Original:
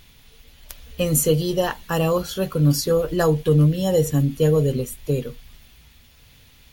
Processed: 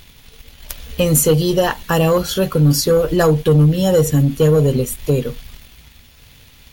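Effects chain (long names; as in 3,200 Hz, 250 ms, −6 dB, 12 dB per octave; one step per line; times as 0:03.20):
leveller curve on the samples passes 1
in parallel at +1.5 dB: downward compressor, threshold −25 dBFS, peak gain reduction 13 dB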